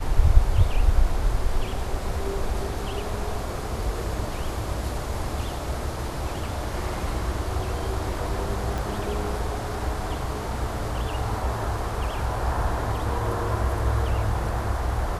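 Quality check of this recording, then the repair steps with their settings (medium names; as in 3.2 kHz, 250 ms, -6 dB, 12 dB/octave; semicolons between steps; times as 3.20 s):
8.78 s: pop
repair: de-click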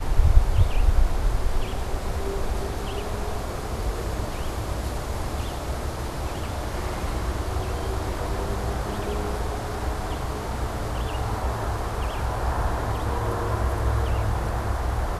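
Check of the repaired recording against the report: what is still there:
8.78 s: pop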